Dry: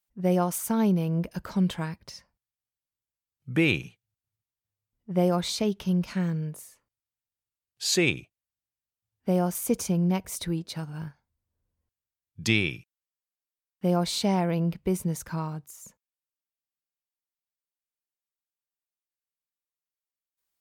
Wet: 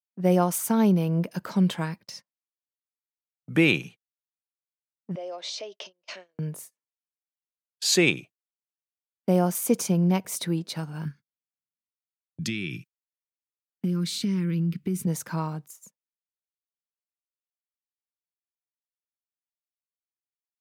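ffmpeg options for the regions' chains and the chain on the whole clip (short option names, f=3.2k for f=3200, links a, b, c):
-filter_complex "[0:a]asettb=1/sr,asplit=3[a][b][c];[a]atrim=end=5.154[d];[b]atrim=start=5.15:end=6.39,asetpts=PTS-STARTPTS,afade=t=in:d=0.004:c=qsin,afade=t=out:st=1.236:d=0.004:c=qsin,acompressor=threshold=-35dB:ratio=5:attack=3.2:release=140:knee=1:detection=peak,highpass=f=410:w=0.5412,highpass=f=410:w=1.3066,equalizer=f=610:t=q:w=4:g=9,equalizer=f=920:t=q:w=4:g=-4,equalizer=f=1.4k:t=q:w=4:g=-6,equalizer=f=2.9k:t=q:w=4:g=5,equalizer=f=5.6k:t=q:w=4:g=4,lowpass=f=6.5k:w=0.5412,lowpass=f=6.5k:w=1.3066[e];[c]atrim=start=6.386[f];[d][e]acrossfade=d=0.004:c1=hsin:c2=qsin[g];[g][f]acrossfade=d=0.004:c1=qsin:c2=hsin,asettb=1/sr,asplit=3[h][i][j];[h]atrim=end=11.054[k];[i]atrim=start=11.05:end=15.07,asetpts=PTS-STARTPTS,afade=t=in:d=0.004:c=qsin,afade=t=out:st=4.016:d=0.004:c=qsin,asuperstop=centerf=710:order=4:qfactor=0.69,acompressor=threshold=-31dB:ratio=6:attack=3.2:release=140:knee=1:detection=peak,lowshelf=f=310:g=8.5[l];[j]atrim=start=15.066[m];[k][l]acrossfade=d=0.004:c1=hsin:c2=qsin[n];[n][m]acrossfade=d=0.004:c1=qsin:c2=hsin,agate=range=-30dB:threshold=-45dB:ratio=16:detection=peak,highpass=f=140:w=0.5412,highpass=f=140:w=1.3066,volume=3dB"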